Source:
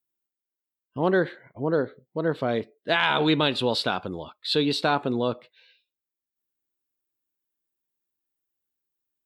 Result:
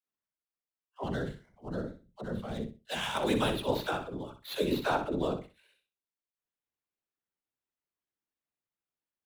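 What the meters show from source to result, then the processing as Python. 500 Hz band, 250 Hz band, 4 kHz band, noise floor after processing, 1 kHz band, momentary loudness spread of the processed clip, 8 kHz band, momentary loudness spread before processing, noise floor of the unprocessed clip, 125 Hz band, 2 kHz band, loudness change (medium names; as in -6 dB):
-8.0 dB, -7.5 dB, -11.0 dB, under -85 dBFS, -7.5 dB, 12 LU, -1.0 dB, 11 LU, under -85 dBFS, -6.5 dB, -10.5 dB, -8.5 dB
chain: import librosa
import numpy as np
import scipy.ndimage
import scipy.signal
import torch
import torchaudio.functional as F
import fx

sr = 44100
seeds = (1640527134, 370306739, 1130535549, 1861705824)

p1 = scipy.ndimage.median_filter(x, 9, mode='constant')
p2 = fx.whisperise(p1, sr, seeds[0])
p3 = fx.dispersion(p2, sr, late='lows', ms=78.0, hz=350.0)
p4 = fx.spec_box(p3, sr, start_s=1.04, length_s=2.11, low_hz=240.0, high_hz=2600.0, gain_db=-8)
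p5 = p4 + fx.echo_feedback(p4, sr, ms=62, feedback_pct=22, wet_db=-9.0, dry=0)
y = p5 * 10.0 ** (-6.5 / 20.0)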